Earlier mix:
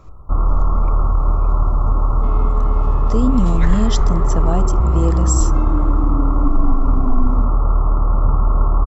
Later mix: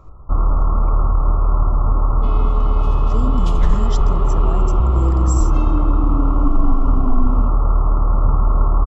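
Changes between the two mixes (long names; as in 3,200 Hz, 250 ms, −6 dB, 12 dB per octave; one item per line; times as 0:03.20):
speech −8.5 dB
second sound: add high shelf with overshoot 2,300 Hz +6 dB, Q 3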